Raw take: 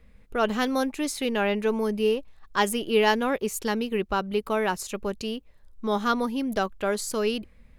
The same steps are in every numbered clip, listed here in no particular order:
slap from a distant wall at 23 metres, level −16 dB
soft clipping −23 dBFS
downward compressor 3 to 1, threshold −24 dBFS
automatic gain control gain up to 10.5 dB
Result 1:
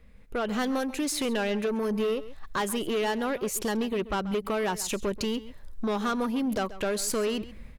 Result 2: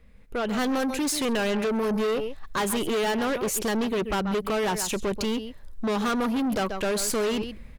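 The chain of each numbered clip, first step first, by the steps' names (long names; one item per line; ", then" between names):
automatic gain control, then downward compressor, then soft clipping, then slap from a distant wall
slap from a distant wall, then downward compressor, then automatic gain control, then soft clipping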